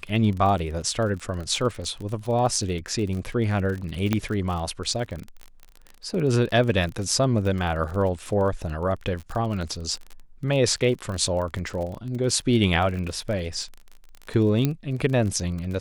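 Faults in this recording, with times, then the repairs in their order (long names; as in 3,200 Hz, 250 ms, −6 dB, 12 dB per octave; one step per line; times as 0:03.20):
surface crackle 34 per second −30 dBFS
0:04.13: click −9 dBFS
0:14.65: click −10 dBFS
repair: click removal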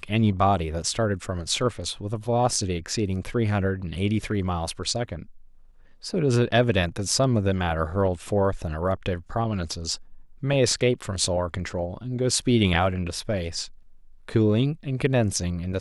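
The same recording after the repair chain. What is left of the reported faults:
none of them is left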